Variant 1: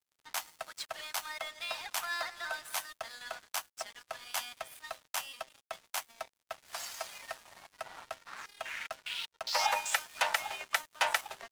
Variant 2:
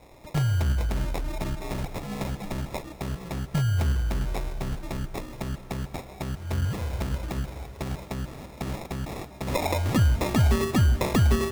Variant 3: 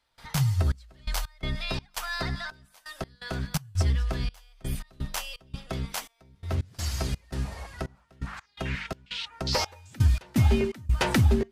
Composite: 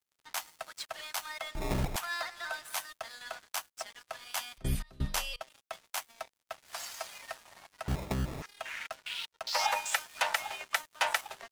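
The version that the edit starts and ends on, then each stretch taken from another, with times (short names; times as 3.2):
1
1.55–1.96 from 2
4.58–5.41 from 3
7.88–8.42 from 2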